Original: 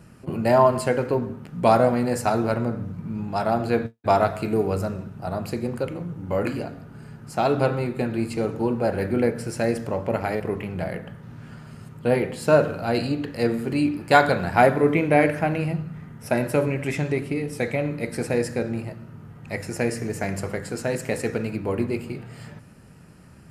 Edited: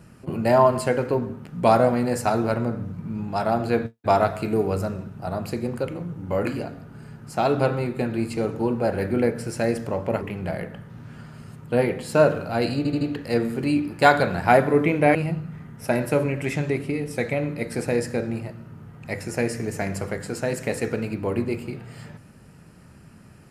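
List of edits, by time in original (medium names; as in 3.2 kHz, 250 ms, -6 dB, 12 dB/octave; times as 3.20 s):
10.21–10.54 s: delete
13.10 s: stutter 0.08 s, 4 plays
15.24–15.57 s: delete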